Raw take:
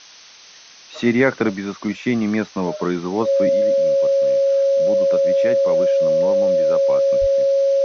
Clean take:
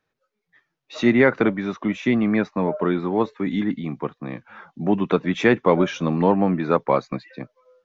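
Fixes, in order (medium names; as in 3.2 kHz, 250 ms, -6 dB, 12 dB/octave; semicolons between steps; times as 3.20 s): band-stop 550 Hz, Q 30; de-plosive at 7.20 s; noise print and reduce 30 dB; trim 0 dB, from 3.49 s +10.5 dB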